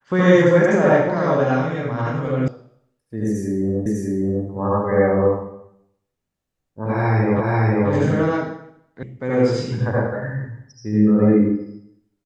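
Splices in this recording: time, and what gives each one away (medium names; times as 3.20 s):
2.48 s: sound stops dead
3.86 s: repeat of the last 0.6 s
7.40 s: repeat of the last 0.49 s
9.03 s: sound stops dead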